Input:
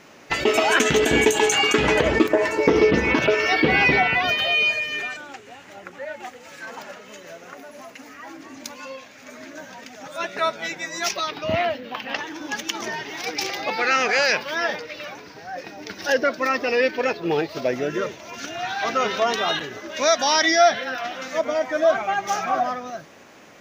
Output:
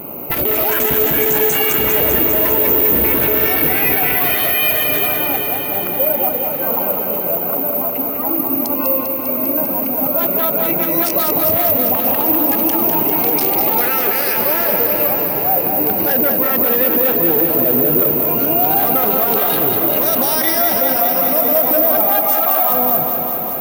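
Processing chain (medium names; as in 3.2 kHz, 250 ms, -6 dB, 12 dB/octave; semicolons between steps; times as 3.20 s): local Wiener filter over 25 samples; 22.09–22.70 s: high-pass 710 Hz 24 dB/octave; careless resampling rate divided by 3×, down none, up zero stuff; loudness maximiser +21.5 dB; bit-crushed delay 199 ms, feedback 80%, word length 7-bit, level -6 dB; trim -3.5 dB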